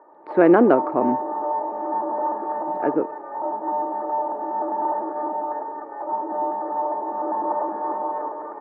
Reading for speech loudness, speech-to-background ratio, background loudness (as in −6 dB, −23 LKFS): −19.5 LKFS, 7.0 dB, −26.5 LKFS